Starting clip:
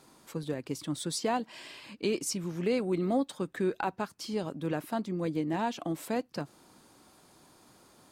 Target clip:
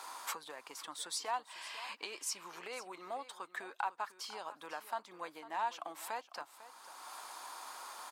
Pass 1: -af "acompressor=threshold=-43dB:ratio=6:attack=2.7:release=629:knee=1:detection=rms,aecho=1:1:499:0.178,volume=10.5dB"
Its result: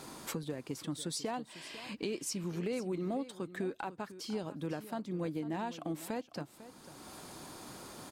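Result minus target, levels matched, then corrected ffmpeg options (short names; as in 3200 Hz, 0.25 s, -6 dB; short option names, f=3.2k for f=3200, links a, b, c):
1000 Hz band -8.0 dB
-af "acompressor=threshold=-43dB:ratio=6:attack=2.7:release=629:knee=1:detection=rms,highpass=f=970:t=q:w=2.3,aecho=1:1:499:0.178,volume=10.5dB"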